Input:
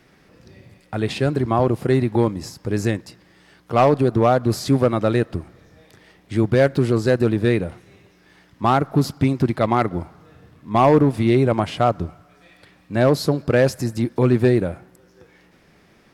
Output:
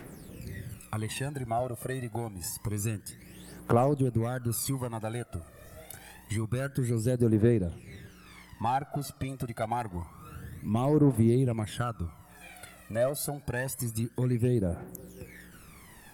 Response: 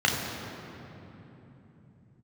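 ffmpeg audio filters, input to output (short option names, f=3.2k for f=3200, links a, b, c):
-af "asetnsamples=n=441:p=0,asendcmd='7.42 highshelf g 6;9.28 highshelf g 12',highshelf=f=7.2k:t=q:w=1.5:g=13,acompressor=threshold=-37dB:ratio=2.5,aphaser=in_gain=1:out_gain=1:delay=1.7:decay=0.72:speed=0.27:type=triangular"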